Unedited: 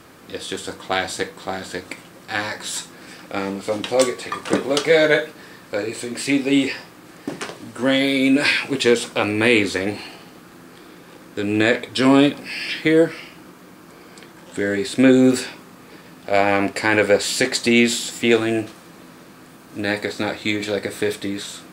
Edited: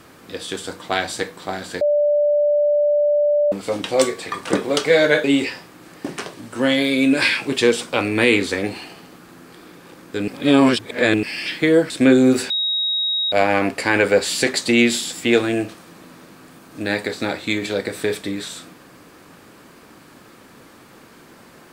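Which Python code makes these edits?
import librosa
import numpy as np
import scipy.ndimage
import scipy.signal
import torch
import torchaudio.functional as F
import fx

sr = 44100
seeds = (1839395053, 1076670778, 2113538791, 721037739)

y = fx.edit(x, sr, fx.bleep(start_s=1.81, length_s=1.71, hz=588.0, db=-13.5),
    fx.cut(start_s=5.24, length_s=1.23),
    fx.reverse_span(start_s=11.51, length_s=0.95),
    fx.cut(start_s=13.13, length_s=1.75),
    fx.bleep(start_s=15.48, length_s=0.82, hz=3790.0, db=-18.0), tone=tone)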